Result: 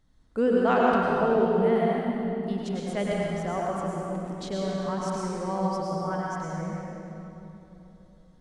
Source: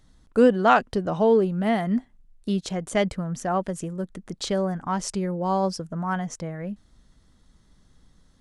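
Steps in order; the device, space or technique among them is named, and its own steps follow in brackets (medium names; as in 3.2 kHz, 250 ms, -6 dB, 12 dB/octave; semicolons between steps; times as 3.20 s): swimming-pool hall (reverberation RT60 3.2 s, pre-delay 91 ms, DRR -5 dB; treble shelf 4.2 kHz -6 dB); trim -8 dB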